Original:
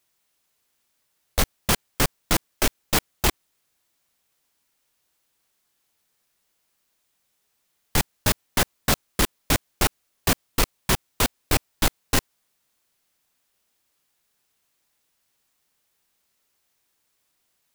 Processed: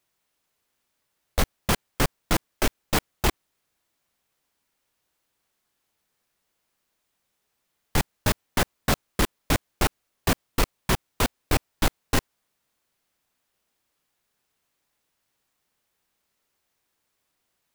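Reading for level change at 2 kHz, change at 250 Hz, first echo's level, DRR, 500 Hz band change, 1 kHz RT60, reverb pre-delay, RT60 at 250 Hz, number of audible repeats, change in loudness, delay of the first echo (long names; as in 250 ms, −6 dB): −2.0 dB, 0.0 dB, no echo audible, no reverb audible, 0.0 dB, no reverb audible, no reverb audible, no reverb audible, no echo audible, −2.5 dB, no echo audible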